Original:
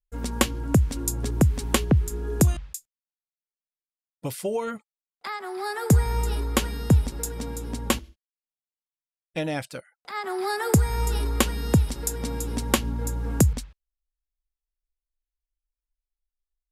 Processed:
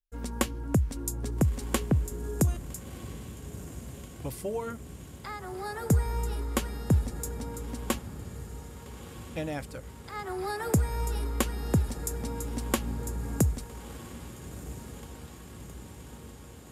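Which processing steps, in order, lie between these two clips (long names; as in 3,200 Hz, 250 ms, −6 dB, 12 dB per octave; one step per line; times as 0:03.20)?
on a send: feedback delay with all-pass diffusion 1,319 ms, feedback 70%, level −14 dB
on the sum: dynamic equaliser 3,500 Hz, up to −4 dB, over −47 dBFS, Q 0.83
level −5.5 dB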